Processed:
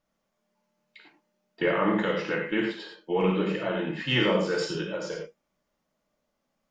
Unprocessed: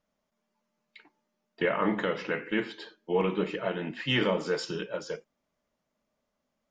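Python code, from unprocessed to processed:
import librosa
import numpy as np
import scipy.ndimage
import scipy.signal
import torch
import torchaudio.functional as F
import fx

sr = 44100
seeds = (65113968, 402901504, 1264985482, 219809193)

y = fx.rev_gated(x, sr, seeds[0], gate_ms=130, shape='flat', drr_db=0.5)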